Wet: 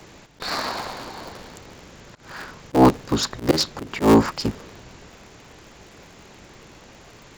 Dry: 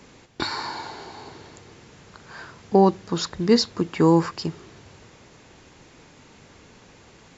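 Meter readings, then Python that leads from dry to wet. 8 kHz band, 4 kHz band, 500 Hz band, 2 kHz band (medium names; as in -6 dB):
no reading, +2.0 dB, 0.0 dB, +4.0 dB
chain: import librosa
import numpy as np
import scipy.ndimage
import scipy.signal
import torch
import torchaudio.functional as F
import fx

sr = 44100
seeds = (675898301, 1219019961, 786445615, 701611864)

y = fx.cycle_switch(x, sr, every=3, mode='inverted')
y = fx.auto_swell(y, sr, attack_ms=119.0)
y = y * 10.0 ** (4.0 / 20.0)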